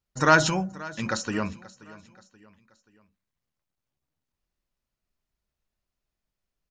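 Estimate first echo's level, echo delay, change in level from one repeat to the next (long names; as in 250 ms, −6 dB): −20.0 dB, 530 ms, −7.0 dB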